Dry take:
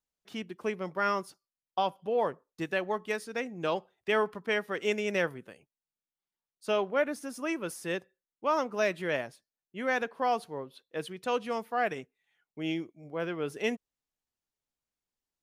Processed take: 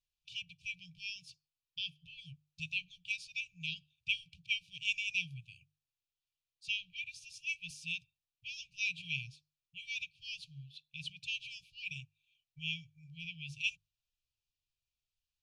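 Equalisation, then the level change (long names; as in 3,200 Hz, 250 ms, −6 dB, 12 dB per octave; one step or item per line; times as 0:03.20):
linear-phase brick-wall band-stop 150–2,300 Hz
high-frequency loss of the air 130 metres
mains-hum notches 50/100/150 Hz
+6.0 dB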